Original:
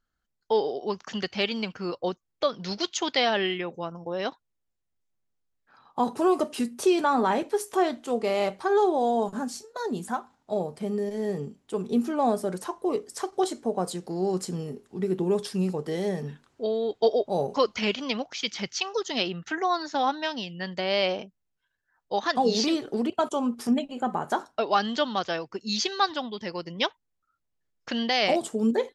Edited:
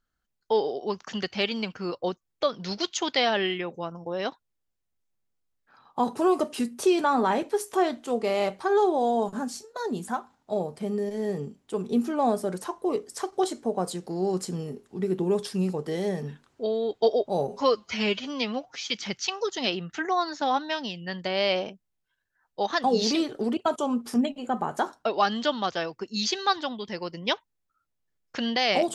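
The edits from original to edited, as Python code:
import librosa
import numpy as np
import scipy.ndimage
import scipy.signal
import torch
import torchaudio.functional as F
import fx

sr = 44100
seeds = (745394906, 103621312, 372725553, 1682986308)

y = fx.edit(x, sr, fx.stretch_span(start_s=17.48, length_s=0.94, factor=1.5), tone=tone)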